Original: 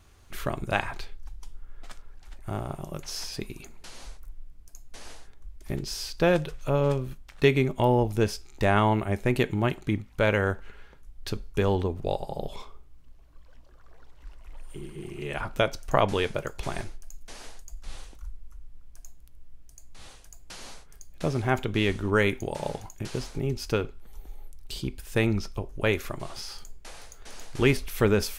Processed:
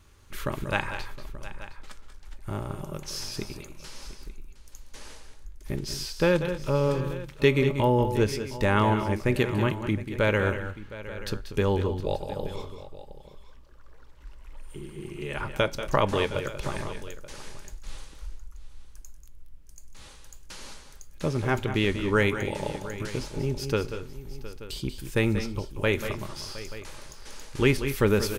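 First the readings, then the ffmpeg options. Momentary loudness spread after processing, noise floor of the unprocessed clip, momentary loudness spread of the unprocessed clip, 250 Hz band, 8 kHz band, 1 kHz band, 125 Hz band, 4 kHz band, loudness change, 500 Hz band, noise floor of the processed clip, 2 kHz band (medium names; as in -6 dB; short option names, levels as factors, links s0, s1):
21 LU, -50 dBFS, 22 LU, +0.5 dB, +0.5 dB, -0.5 dB, +0.5 dB, +0.5 dB, 0.0 dB, +0.5 dB, -48 dBFS, +0.5 dB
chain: -filter_complex "[0:a]asuperstop=centerf=710:order=4:qfactor=5.4,asplit=2[s0][s1];[s1]aecho=0:1:187|209|714|881:0.299|0.168|0.15|0.141[s2];[s0][s2]amix=inputs=2:normalize=0"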